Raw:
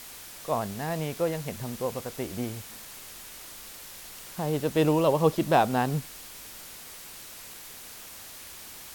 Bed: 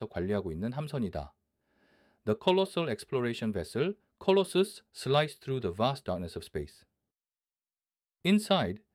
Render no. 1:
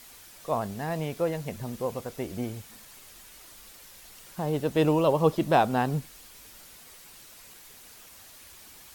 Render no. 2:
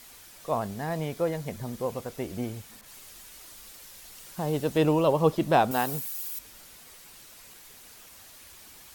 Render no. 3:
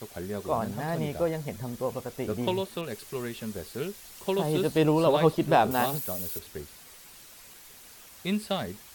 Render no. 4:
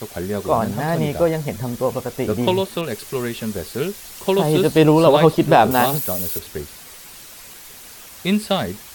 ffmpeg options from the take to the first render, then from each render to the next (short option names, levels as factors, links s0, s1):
-af "afftdn=nr=7:nf=-45"
-filter_complex "[0:a]asettb=1/sr,asplit=3[s0][s1][s2];[s0]atrim=end=0.754[s3];[s1]atrim=start=0.75:end=1.83,asetpts=PTS-STARTPTS,afade=t=in:d=0.004:c=qsin,afade=t=out:st=1.076:d=0.004:c=qsin,bandreject=f=2700:w=13[s4];[s2]atrim=start=1.826[s5];[s3][s4]acrossfade=d=0.004:c1=hsin:c2=qsin[s6];[s6][s5]acrossfade=d=0.004:c1=qsin:c2=hsin,asettb=1/sr,asplit=3[s7][s8][s9];[s7]atrim=end=2.814[s10];[s8]atrim=start=2.81:end=4.78,asetpts=PTS-STARTPTS,afade=t=in:d=0.004:c=qsin,afade=t=out:st=1.966:d=0.004:c=qsin,adynamicequalizer=threshold=0.002:dfrequency=3400:dqfactor=0.7:tfrequency=3400:tqfactor=0.7:attack=5:release=100:ratio=0.375:range=2:mode=boostabove:tftype=highshelf[s11];[s9]atrim=start=4.776[s12];[s10][s11]acrossfade=d=0.004:c1=hsin:c2=qsin[s13];[s13][s12]acrossfade=d=0.004:c1=qsin:c2=hsin,asettb=1/sr,asplit=3[s14][s15][s16];[s14]atrim=end=5.714[s17];[s15]atrim=start=5.71:end=6.39,asetpts=PTS-STARTPTS,afade=t=in:d=0.004:c=qsin,afade=t=out:st=0.676:d=0.004:c=qsin,aemphasis=mode=production:type=bsi[s18];[s16]atrim=start=6.386[s19];[s17][s18]acrossfade=d=0.004:c1=hsin:c2=qsin[s20];[s20][s19]acrossfade=d=0.004:c1=qsin:c2=hsin"
-filter_complex "[1:a]volume=0.668[s0];[0:a][s0]amix=inputs=2:normalize=0"
-af "volume=3.16,alimiter=limit=0.794:level=0:latency=1"